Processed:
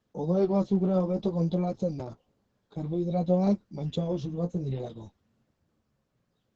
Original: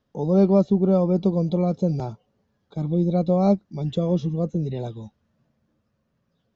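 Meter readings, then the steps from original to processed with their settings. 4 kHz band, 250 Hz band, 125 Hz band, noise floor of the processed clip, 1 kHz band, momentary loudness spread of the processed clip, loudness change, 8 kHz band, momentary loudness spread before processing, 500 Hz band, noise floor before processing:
-3.5 dB, -7.0 dB, -6.5 dB, -77 dBFS, -6.0 dB, 13 LU, -6.5 dB, n/a, 13 LU, -6.5 dB, -73 dBFS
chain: dynamic EQ 260 Hz, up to -4 dB, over -26 dBFS, Q 0.79; flange 0.56 Hz, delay 8.7 ms, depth 8.5 ms, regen +24%; Opus 10 kbps 48000 Hz

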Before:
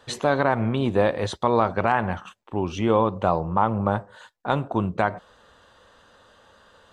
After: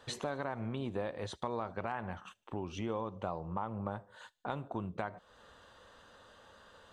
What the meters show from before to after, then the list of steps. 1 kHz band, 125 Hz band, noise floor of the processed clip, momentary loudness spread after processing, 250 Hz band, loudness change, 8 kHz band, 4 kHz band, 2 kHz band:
-16.5 dB, -15.0 dB, -66 dBFS, 20 LU, -15.0 dB, -16.0 dB, n/a, -11.5 dB, -16.0 dB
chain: compressor 2.5:1, threshold -36 dBFS, peak gain reduction 14.5 dB; on a send: thin delay 75 ms, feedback 63%, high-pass 3900 Hz, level -24 dB; on the sum: gain -4 dB

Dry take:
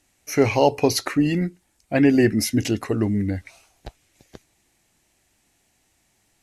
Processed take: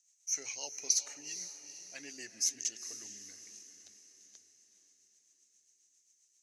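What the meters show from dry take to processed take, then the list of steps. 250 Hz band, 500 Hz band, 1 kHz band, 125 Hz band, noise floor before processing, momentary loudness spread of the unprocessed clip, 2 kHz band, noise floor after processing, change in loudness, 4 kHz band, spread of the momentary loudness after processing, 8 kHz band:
-38.5 dB, -34.5 dB, under -30 dB, under -40 dB, -67 dBFS, 9 LU, -20.5 dB, -73 dBFS, -15.0 dB, -9.0 dB, 20 LU, +0.5 dB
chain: rotary speaker horn 7.5 Hz; band-pass 6300 Hz, Q 7.8; diffused feedback echo 0.457 s, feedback 49%, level -11 dB; gain +8 dB

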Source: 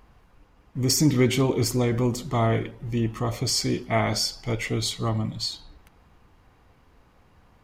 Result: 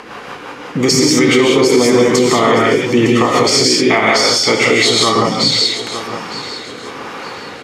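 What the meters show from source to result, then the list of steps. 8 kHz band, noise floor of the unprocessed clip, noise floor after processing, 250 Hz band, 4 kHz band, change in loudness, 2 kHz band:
+12.5 dB, -59 dBFS, -31 dBFS, +12.0 dB, +16.0 dB, +13.5 dB, +18.5 dB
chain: HPF 420 Hz 12 dB/oct; bell 650 Hz -6.5 dB 0.37 oct; compressor 2:1, threshold -53 dBFS, peak gain reduction 18 dB; rotary speaker horn 5.5 Hz, later 1 Hz, at 4.97; air absorption 54 m; feedback echo 0.909 s, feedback 31%, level -14.5 dB; non-linear reverb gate 0.21 s rising, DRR -1.5 dB; maximiser +35.5 dB; gain -1 dB

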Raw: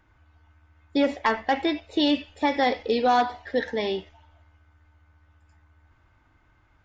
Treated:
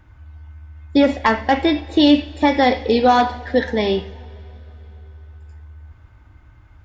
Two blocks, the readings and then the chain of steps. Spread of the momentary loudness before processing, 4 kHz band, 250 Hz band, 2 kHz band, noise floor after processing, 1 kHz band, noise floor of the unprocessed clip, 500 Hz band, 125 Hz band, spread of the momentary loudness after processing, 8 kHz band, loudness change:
7 LU, +6.5 dB, +9.5 dB, +6.5 dB, -48 dBFS, +6.5 dB, -63 dBFS, +7.5 dB, +16.5 dB, 7 LU, n/a, +8.0 dB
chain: bell 62 Hz +11.5 dB 2.9 oct; two-slope reverb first 0.5 s, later 3.6 s, from -18 dB, DRR 11 dB; gain +6 dB

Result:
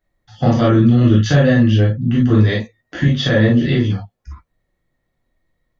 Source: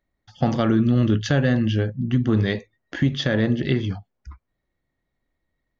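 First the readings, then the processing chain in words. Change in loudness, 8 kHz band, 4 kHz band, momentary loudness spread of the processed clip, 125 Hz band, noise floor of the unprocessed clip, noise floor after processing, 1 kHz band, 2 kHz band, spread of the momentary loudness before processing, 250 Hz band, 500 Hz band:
+7.5 dB, n/a, +6.0 dB, 8 LU, +8.5 dB, -79 dBFS, -73 dBFS, +6.0 dB, +6.5 dB, 8 LU, +6.5 dB, +7.0 dB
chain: non-linear reverb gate 80 ms flat, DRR -6.5 dB; gain -1.5 dB

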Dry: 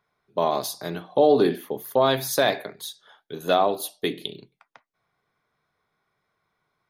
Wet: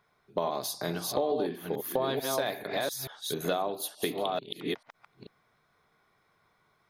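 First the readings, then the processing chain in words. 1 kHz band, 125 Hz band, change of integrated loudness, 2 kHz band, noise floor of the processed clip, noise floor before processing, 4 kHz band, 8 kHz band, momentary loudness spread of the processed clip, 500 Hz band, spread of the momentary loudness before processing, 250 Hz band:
-8.5 dB, -5.0 dB, -8.5 dB, -6.5 dB, -71 dBFS, -77 dBFS, -5.0 dB, -2.5 dB, 6 LU, -8.5 dB, 17 LU, -7.5 dB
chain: reverse delay 0.439 s, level -5 dB; compressor 4:1, threshold -34 dBFS, peak gain reduction 19 dB; gain +4.5 dB

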